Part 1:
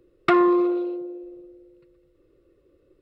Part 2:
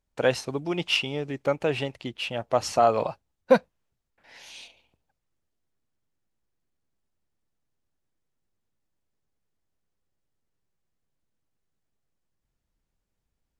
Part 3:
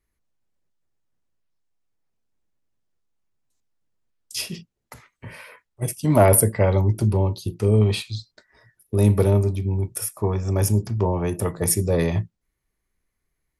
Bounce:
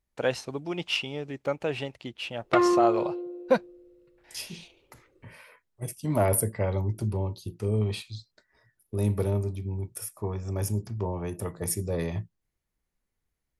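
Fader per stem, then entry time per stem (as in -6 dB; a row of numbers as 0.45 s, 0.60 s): -4.5 dB, -4.0 dB, -9.0 dB; 2.25 s, 0.00 s, 0.00 s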